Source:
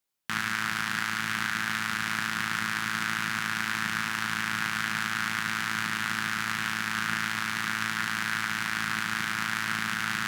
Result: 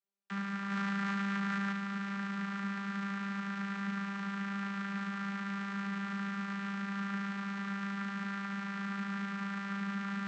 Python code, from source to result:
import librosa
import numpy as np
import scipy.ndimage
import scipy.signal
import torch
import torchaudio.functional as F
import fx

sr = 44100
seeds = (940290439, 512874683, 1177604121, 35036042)

y = fx.vocoder(x, sr, bands=32, carrier='saw', carrier_hz=198.0)
y = fx.env_flatten(y, sr, amount_pct=100, at=(0.7, 1.71), fade=0.02)
y = y * librosa.db_to_amplitude(-6.0)